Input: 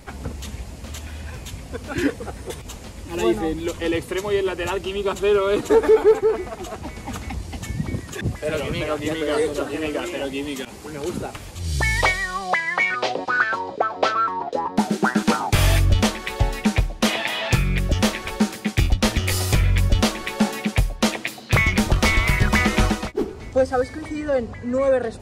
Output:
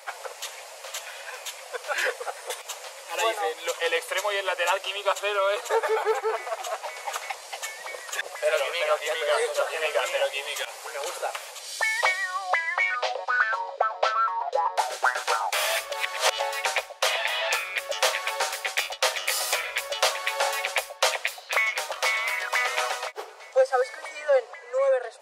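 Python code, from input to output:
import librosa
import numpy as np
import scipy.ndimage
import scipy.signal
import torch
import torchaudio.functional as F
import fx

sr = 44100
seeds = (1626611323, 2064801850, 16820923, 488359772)

y = fx.edit(x, sr, fx.reverse_span(start_s=15.93, length_s=0.46), tone=tone)
y = scipy.signal.sosfilt(scipy.signal.ellip(4, 1.0, 50, 530.0, 'highpass', fs=sr, output='sos'), y)
y = fx.rider(y, sr, range_db=4, speed_s=0.5)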